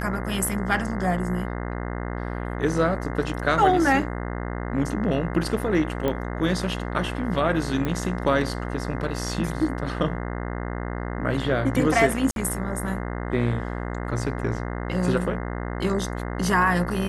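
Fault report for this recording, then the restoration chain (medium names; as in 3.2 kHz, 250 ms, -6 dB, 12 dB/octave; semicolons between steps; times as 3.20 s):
buzz 60 Hz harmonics 35 -30 dBFS
6.08 s: pop -13 dBFS
7.85 s: pop -15 dBFS
12.31–12.36 s: dropout 52 ms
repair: de-click; de-hum 60 Hz, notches 35; interpolate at 12.31 s, 52 ms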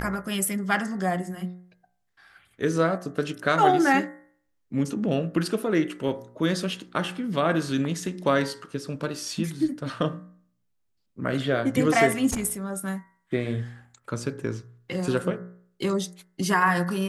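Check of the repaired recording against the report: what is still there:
nothing left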